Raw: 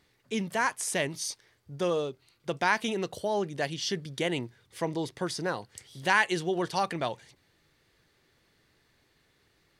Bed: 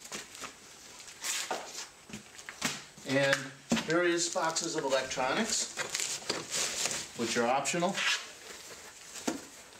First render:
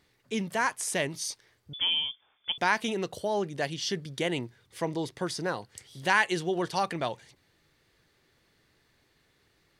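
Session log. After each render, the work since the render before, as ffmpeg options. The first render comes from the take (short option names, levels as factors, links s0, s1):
-filter_complex "[0:a]asettb=1/sr,asplit=3[s0][s1][s2];[s0]atrim=end=1.734[s3];[s1]atrim=start=1.73:end=2.58,asetpts=PTS-STARTPTS,afade=t=in:d=0.004:c=qsin,afade=t=out:st=0.846:d=0.004:c=qsin,lowpass=f=3100:t=q:w=0.5098,lowpass=f=3100:t=q:w=0.6013,lowpass=f=3100:t=q:w=0.9,lowpass=f=3100:t=q:w=2.563,afreqshift=-3600[s4];[s2]atrim=start=2.576[s5];[s3][s4]acrossfade=d=0.004:c1=hsin:c2=qsin[s6];[s6][s5]acrossfade=d=0.004:c1=qsin:c2=hsin"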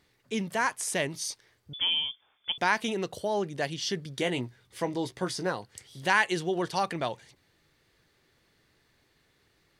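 -filter_complex "[0:a]asettb=1/sr,asplit=3[s0][s1][s2];[s0]atrim=end=4.174[s3];[s1]atrim=start=4.17:end=5.52,asetpts=PTS-STARTPTS,afade=t=in:d=0.004:c=qsin,afade=t=out:st=1.346:d=0.004:c=qsin,asplit=2[s4][s5];[s5]adelay=16,volume=0.398[s6];[s4][s6]amix=inputs=2:normalize=0,atrim=end_sample=59535[s7];[s2]atrim=start=5.516[s8];[s3][s7]acrossfade=d=0.004:c1=hsin:c2=qsin[s9];[s9][s8]acrossfade=d=0.004:c1=qsin:c2=hsin"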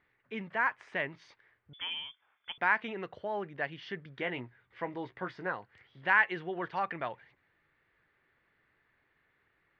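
-af "lowpass=f=1900:w=0.5412,lowpass=f=1900:w=1.3066,tiltshelf=f=1400:g=-10"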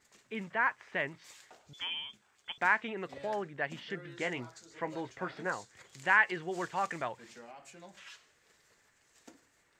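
-filter_complex "[1:a]volume=0.0794[s0];[0:a][s0]amix=inputs=2:normalize=0"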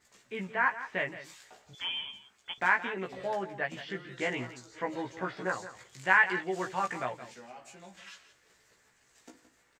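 -filter_complex "[0:a]asplit=2[s0][s1];[s1]adelay=16,volume=0.708[s2];[s0][s2]amix=inputs=2:normalize=0,aecho=1:1:170:0.211"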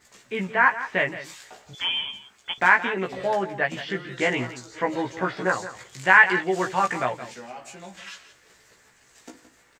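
-af "volume=2.82,alimiter=limit=0.794:level=0:latency=1"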